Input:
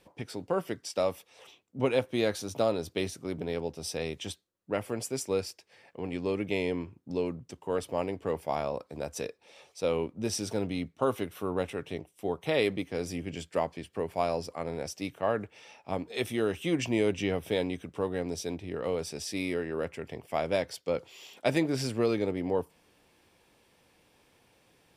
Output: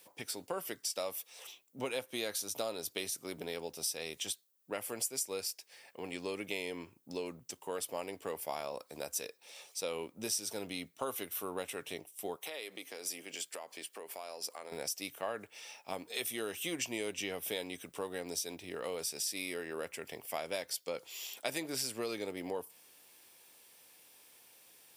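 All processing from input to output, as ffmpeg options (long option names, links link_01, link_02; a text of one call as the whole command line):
ffmpeg -i in.wav -filter_complex "[0:a]asettb=1/sr,asplit=3[link_01][link_02][link_03];[link_01]atrim=end=12.364[link_04];[link_02]atrim=start=12.36:end=14.72,asetpts=PTS-STARTPTS,afade=type=in:duration=0.004:curve=qsin,afade=type=out:start_time=2.356:duration=0.004:curve=qsin,highpass=320,acompressor=threshold=-37dB:ratio=8:attack=3.2:release=140:knee=1:detection=peak[link_05];[link_03]atrim=start=14.716[link_06];[link_04][link_05]acrossfade=duration=0.004:curve1=hsin:curve2=qsin[link_07];[link_07][link_06]acrossfade=duration=0.004:curve1=qsin:curve2=hsin,aemphasis=mode=production:type=riaa,acompressor=threshold=-34dB:ratio=2.5,volume=-2dB" out.wav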